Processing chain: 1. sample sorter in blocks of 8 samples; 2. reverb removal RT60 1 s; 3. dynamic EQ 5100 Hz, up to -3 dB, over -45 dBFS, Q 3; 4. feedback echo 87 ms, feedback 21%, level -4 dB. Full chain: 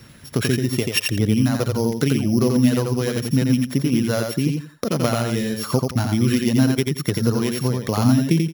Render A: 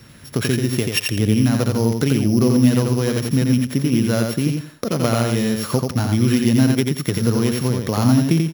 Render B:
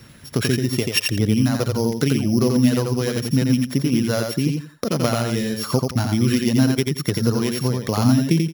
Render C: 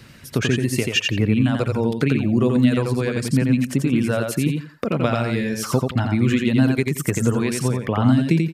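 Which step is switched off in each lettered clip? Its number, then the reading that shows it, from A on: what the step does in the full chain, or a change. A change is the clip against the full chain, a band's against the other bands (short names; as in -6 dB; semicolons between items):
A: 2, loudness change +2.0 LU; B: 3, 4 kHz band +1.5 dB; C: 1, distortion -12 dB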